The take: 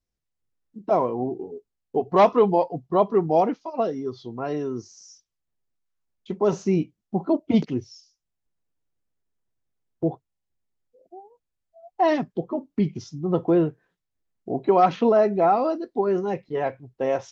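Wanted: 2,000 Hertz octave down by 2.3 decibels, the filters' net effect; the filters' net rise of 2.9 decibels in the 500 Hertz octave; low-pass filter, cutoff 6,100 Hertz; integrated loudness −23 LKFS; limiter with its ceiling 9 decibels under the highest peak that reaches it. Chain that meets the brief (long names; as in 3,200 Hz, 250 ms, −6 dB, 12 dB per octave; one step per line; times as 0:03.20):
low-pass filter 6,100 Hz
parametric band 500 Hz +4 dB
parametric band 2,000 Hz −3 dB
level +2 dB
brickwall limiter −11.5 dBFS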